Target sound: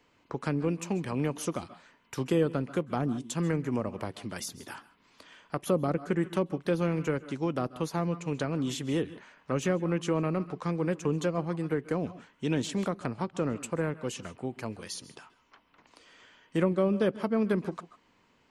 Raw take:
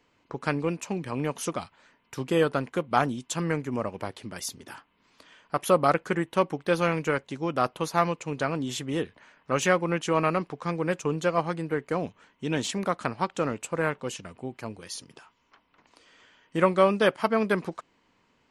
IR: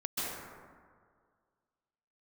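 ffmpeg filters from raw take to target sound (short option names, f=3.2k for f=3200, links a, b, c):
-filter_complex "[0:a]asplit=2[a][b];[1:a]atrim=start_sample=2205,afade=t=out:st=0.21:d=0.01,atrim=end_sample=9702[c];[b][c]afir=irnorm=-1:irlink=0,volume=-17.5dB[d];[a][d]amix=inputs=2:normalize=0,acrossover=split=440[e][f];[f]acompressor=threshold=-35dB:ratio=6[g];[e][g]amix=inputs=2:normalize=0"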